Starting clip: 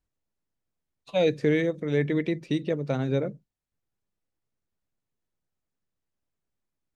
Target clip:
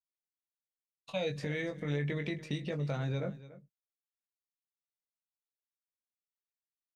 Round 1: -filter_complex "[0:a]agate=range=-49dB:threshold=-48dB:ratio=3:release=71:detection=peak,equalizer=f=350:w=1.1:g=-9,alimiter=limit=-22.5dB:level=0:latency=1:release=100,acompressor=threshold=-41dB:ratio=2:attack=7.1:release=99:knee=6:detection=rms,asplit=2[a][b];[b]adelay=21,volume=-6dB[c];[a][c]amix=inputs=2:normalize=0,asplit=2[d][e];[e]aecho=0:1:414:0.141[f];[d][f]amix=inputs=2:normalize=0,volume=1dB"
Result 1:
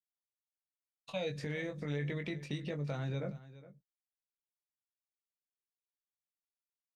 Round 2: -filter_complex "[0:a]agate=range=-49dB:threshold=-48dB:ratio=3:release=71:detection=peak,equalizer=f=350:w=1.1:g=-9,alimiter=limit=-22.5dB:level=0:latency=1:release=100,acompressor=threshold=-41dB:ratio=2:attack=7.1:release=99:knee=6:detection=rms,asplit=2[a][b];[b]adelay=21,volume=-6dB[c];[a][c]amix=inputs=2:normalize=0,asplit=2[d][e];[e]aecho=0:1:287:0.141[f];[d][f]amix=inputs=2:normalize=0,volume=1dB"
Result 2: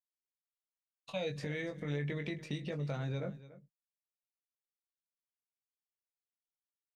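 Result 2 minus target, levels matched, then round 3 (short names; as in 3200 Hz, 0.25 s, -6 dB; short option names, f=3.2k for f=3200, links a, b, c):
compressor: peak gain reduction +3 dB
-filter_complex "[0:a]agate=range=-49dB:threshold=-48dB:ratio=3:release=71:detection=peak,equalizer=f=350:w=1.1:g=-9,alimiter=limit=-22.5dB:level=0:latency=1:release=100,acompressor=threshold=-35dB:ratio=2:attack=7.1:release=99:knee=6:detection=rms,asplit=2[a][b];[b]adelay=21,volume=-6dB[c];[a][c]amix=inputs=2:normalize=0,asplit=2[d][e];[e]aecho=0:1:287:0.141[f];[d][f]amix=inputs=2:normalize=0,volume=1dB"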